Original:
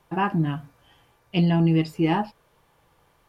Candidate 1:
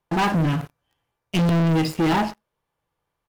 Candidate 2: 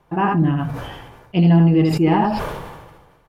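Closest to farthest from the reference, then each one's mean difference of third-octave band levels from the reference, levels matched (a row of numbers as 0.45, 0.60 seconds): 2, 1; 5.0, 8.0 decibels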